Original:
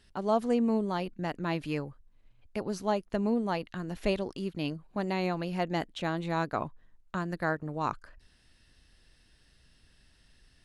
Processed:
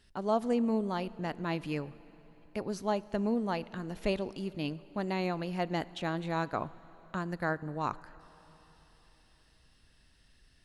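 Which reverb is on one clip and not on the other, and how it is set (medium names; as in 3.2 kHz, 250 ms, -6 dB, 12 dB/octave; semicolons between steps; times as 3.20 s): plate-style reverb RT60 4 s, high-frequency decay 0.8×, DRR 18 dB; trim -2 dB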